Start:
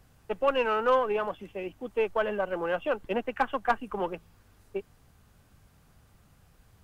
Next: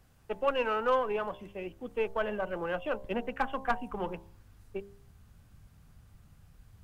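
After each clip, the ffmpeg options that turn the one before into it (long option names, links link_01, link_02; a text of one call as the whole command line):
ffmpeg -i in.wav -af "bandreject=frequency=66.64:width_type=h:width=4,bandreject=frequency=133.28:width_type=h:width=4,bandreject=frequency=199.92:width_type=h:width=4,bandreject=frequency=266.56:width_type=h:width=4,bandreject=frequency=333.2:width_type=h:width=4,bandreject=frequency=399.84:width_type=h:width=4,bandreject=frequency=466.48:width_type=h:width=4,bandreject=frequency=533.12:width_type=h:width=4,bandreject=frequency=599.76:width_type=h:width=4,bandreject=frequency=666.4:width_type=h:width=4,bandreject=frequency=733.04:width_type=h:width=4,bandreject=frequency=799.68:width_type=h:width=4,bandreject=frequency=866.32:width_type=h:width=4,bandreject=frequency=932.96:width_type=h:width=4,bandreject=frequency=999.6:width_type=h:width=4,bandreject=frequency=1066.24:width_type=h:width=4,asubboost=boost=2:cutoff=250,volume=-3dB" out.wav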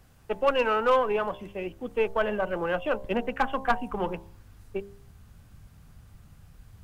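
ffmpeg -i in.wav -af "volume=20dB,asoftclip=hard,volume=-20dB,volume=5.5dB" out.wav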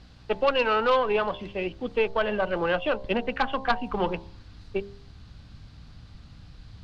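ffmpeg -i in.wav -af "alimiter=limit=-18.5dB:level=0:latency=1:release=291,aeval=exprs='val(0)+0.00158*(sin(2*PI*60*n/s)+sin(2*PI*2*60*n/s)/2+sin(2*PI*3*60*n/s)/3+sin(2*PI*4*60*n/s)/4+sin(2*PI*5*60*n/s)/5)':channel_layout=same,lowpass=frequency=4300:width_type=q:width=3.7,volume=3.5dB" out.wav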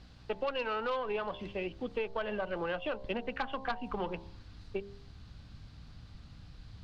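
ffmpeg -i in.wav -af "acompressor=threshold=-29dB:ratio=3,volume=-4dB" out.wav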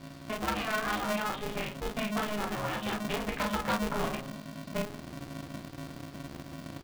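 ffmpeg -i in.wav -af "aecho=1:1:0.9:0.57,aecho=1:1:15|36|51:0.708|0.668|0.501,aeval=exprs='val(0)*sgn(sin(2*PI*210*n/s))':channel_layout=same" out.wav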